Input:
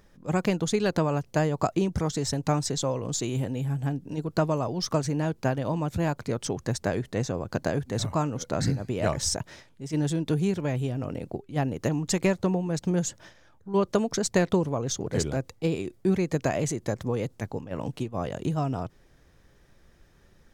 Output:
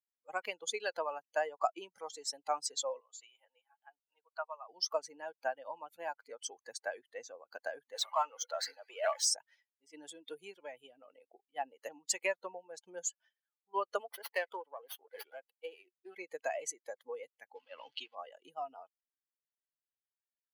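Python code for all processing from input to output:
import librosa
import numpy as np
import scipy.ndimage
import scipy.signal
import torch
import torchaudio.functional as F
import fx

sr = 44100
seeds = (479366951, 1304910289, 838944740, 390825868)

y = fx.chain(x, sr, fx.highpass(hz=810.0, slope=12),
    fx.high_shelf(hz=3300.0, db=-11.0), at=(3.0, 4.69))
y = fx.chain(y, sr, fx.highpass(hz=550.0, slope=12),
    fx.high_shelf(hz=8800.0, db=-8.0),
    fx.power_curve(exponent=0.7), at=(7.94, 9.26))
y = fx.chain(y, sr, fx.highpass(hz=420.0, slope=6),
    fx.running_max(window=5), at=(14.0, 16.16))
y = fx.chain(y, sr, fx.zero_step(step_db=-42.0),
    fx.lowpass(hz=5700.0, slope=12),
    fx.peak_eq(hz=4400.0, db=10.0, octaves=2.3), at=(17.55, 18.15))
y = fx.bin_expand(y, sr, power=2.0)
y = scipy.signal.sosfilt(scipy.signal.butter(4, 590.0, 'highpass', fs=sr, output='sos'), y)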